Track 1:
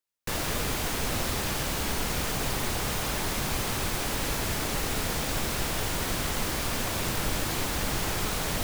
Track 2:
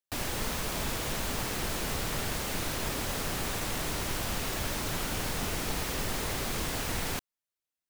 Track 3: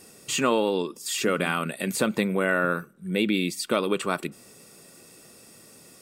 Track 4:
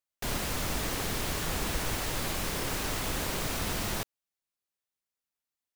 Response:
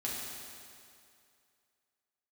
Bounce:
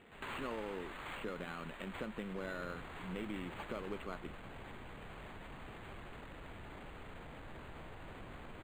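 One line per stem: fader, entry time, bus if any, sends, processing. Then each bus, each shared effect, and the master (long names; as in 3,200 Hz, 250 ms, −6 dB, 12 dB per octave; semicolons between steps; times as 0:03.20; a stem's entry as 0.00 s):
−16.0 dB, 2.10 s, bus A, no send, no processing
−14.0 dB, 0.00 s, bus A, no send, guitar amp tone stack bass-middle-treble 10-0-10
−9.0 dB, 0.00 s, bus B, no send, no processing
+3.0 dB, 0.00 s, bus B, no send, Chebyshev high-pass filter 870 Hz, order 10; automatic ducking −14 dB, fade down 1.55 s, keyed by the third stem
bus A: 0.0 dB, high-shelf EQ 10,000 Hz −9.5 dB; brickwall limiter −40 dBFS, peak gain reduction 7.5 dB
bus B: 0.0 dB, downward compressor 2 to 1, threshold −46 dBFS, peak gain reduction 11 dB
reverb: not used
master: linearly interpolated sample-rate reduction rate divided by 8×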